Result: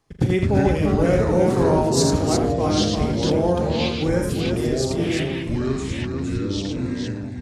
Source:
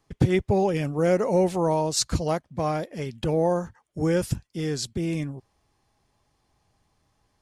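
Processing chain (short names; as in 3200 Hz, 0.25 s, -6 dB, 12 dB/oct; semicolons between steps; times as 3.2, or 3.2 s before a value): tapped delay 40/82/110/344 ms -9.5/-5/-17.5/-5 dB; echoes that change speed 0.141 s, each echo -5 st, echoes 3; spectral gain 4.09–4.29, 2400–5100 Hz -9 dB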